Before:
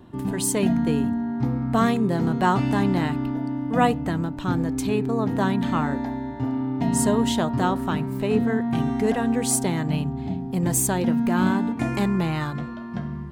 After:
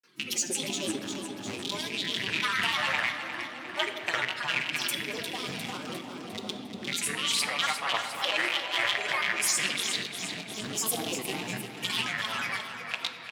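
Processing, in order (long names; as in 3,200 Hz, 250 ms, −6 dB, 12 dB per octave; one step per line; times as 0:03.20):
loose part that buzzes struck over −23 dBFS, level −14 dBFS
meter weighting curve A
reverb reduction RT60 0.62 s
bass and treble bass −9 dB, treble +5 dB
mains-hum notches 50/100/150 Hz
comb filter 6.3 ms, depth 89%
in parallel at +2 dB: compressor whose output falls as the input rises −27 dBFS
on the sum: granular cloud, pitch spread up and down by 7 semitones
all-pass phaser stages 2, 0.21 Hz, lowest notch 170–2,000 Hz
repeating echo 353 ms, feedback 55%, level −8.5 dB
on a send at −5.5 dB: convolution reverb RT60 2.4 s, pre-delay 4 ms
on the sum: amplitude modulation by smooth noise, depth 50%
level −7 dB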